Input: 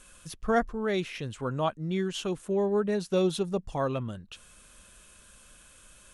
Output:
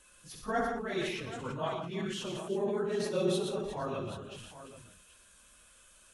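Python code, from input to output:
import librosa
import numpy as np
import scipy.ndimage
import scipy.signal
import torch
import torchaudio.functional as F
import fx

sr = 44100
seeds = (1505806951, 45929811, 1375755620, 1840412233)

y = fx.phase_scramble(x, sr, seeds[0], window_ms=50)
y = fx.low_shelf(y, sr, hz=260.0, db=-6.5)
y = fx.echo_multitap(y, sr, ms=(65, 118, 174, 348, 780), db=(-10.0, -8.0, -12.5, -14.0, -13.0))
y = fx.sustainer(y, sr, db_per_s=40.0)
y = y * 10.0 ** (-6.0 / 20.0)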